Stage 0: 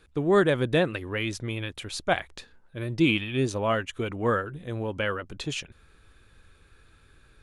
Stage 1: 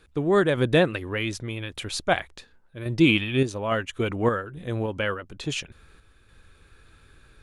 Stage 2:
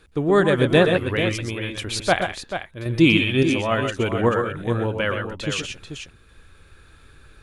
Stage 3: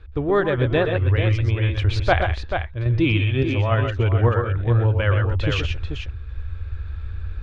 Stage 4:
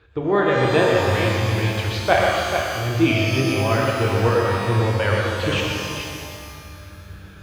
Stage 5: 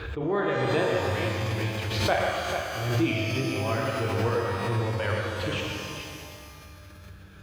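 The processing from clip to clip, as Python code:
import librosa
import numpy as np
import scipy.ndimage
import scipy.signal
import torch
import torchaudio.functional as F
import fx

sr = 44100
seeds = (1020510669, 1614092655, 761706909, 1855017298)

y1 = fx.tremolo_random(x, sr, seeds[0], hz=3.5, depth_pct=55)
y1 = y1 * 10.0 ** (4.5 / 20.0)
y2 = fx.echo_multitap(y1, sr, ms=(118, 129, 437), db=(-9.5, -8.5, -9.0))
y2 = y2 * 10.0 ** (3.0 / 20.0)
y3 = fx.low_shelf_res(y2, sr, hz=120.0, db=13.0, q=3.0)
y3 = fx.rider(y3, sr, range_db=5, speed_s=0.5)
y3 = fx.air_absorb(y3, sr, metres=230.0)
y4 = scipy.signal.sosfilt(scipy.signal.butter(2, 160.0, 'highpass', fs=sr, output='sos'), y3)
y4 = fx.rev_shimmer(y4, sr, seeds[1], rt60_s=2.0, semitones=12, shimmer_db=-8, drr_db=-0.5)
y5 = fx.pre_swell(y4, sr, db_per_s=40.0)
y5 = y5 * 10.0 ** (-8.5 / 20.0)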